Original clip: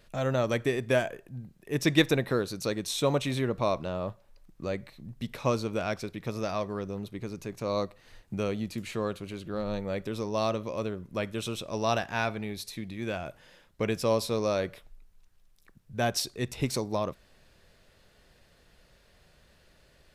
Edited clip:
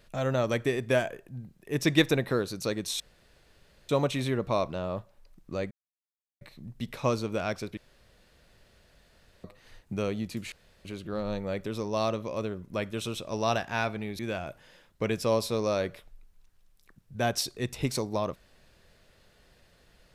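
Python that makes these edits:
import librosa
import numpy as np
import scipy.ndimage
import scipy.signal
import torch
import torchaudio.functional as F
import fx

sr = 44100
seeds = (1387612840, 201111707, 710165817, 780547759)

y = fx.edit(x, sr, fx.insert_room_tone(at_s=3.0, length_s=0.89),
    fx.insert_silence(at_s=4.82, length_s=0.7),
    fx.room_tone_fill(start_s=6.18, length_s=1.67),
    fx.room_tone_fill(start_s=8.93, length_s=0.33),
    fx.cut(start_s=12.6, length_s=0.38), tone=tone)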